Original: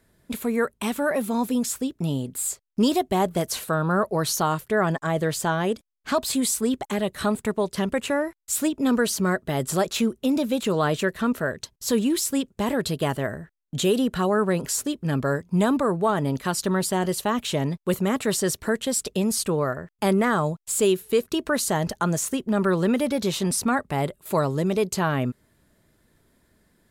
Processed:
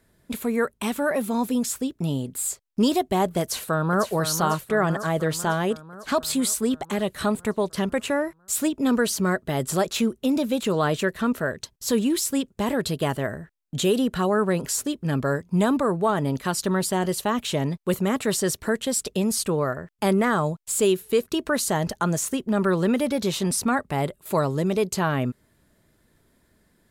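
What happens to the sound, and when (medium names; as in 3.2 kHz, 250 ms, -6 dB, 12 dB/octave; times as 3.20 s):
3.42–4.08 s: echo throw 500 ms, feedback 65%, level -8.5 dB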